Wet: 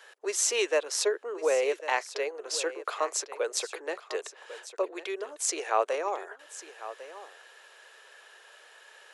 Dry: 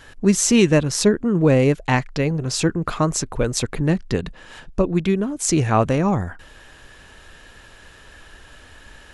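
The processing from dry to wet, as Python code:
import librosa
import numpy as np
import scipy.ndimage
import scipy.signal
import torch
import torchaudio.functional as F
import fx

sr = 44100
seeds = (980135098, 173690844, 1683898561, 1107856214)

y = scipy.signal.sosfilt(scipy.signal.butter(8, 410.0, 'highpass', fs=sr, output='sos'), x)
y = y + 10.0 ** (-14.5 / 20.0) * np.pad(y, (int(1099 * sr / 1000.0), 0))[:len(y)]
y = y * librosa.db_to_amplitude(-6.5)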